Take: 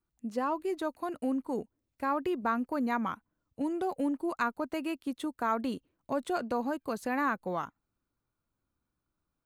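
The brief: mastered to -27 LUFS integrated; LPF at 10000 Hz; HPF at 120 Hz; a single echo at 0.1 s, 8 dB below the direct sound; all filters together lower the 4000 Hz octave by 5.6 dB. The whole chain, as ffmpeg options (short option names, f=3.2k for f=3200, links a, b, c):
-af "highpass=120,lowpass=10k,equalizer=f=4k:t=o:g=-7.5,aecho=1:1:100:0.398,volume=6dB"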